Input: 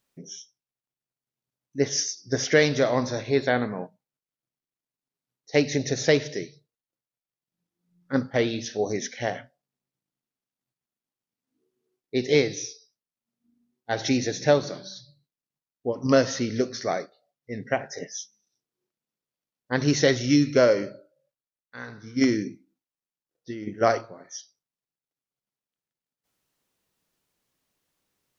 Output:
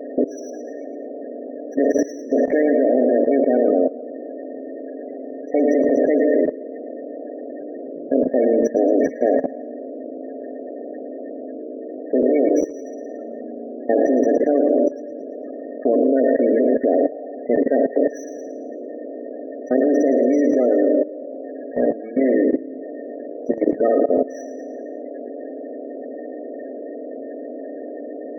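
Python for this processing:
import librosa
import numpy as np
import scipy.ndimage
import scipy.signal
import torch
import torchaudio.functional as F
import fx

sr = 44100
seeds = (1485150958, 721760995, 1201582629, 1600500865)

p1 = fx.bin_compress(x, sr, power=0.2)
p2 = scipy.signal.sosfilt(scipy.signal.butter(4, 200.0, 'highpass', fs=sr, output='sos'), p1)
p3 = fx.spec_topn(p2, sr, count=16)
p4 = fx.peak_eq(p3, sr, hz=290.0, db=3.5, octaves=1.2)
p5 = p4 + fx.echo_feedback(p4, sr, ms=112, feedback_pct=46, wet_db=-11.0, dry=0)
p6 = fx.level_steps(p5, sr, step_db=16)
y = np.interp(np.arange(len(p6)), np.arange(len(p6))[::2], p6[::2])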